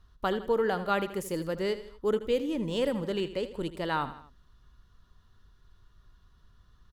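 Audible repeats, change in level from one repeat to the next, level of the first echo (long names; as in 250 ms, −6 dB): 3, −6.0 dB, −13.5 dB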